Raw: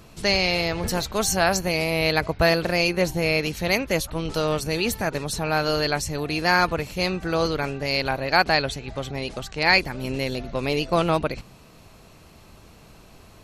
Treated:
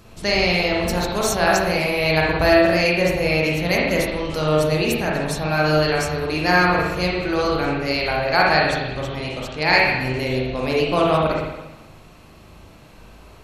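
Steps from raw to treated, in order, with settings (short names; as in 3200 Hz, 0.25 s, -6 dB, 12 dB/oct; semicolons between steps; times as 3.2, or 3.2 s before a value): spring tank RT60 1.1 s, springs 39/57 ms, chirp 25 ms, DRR -3.5 dB; gain -1 dB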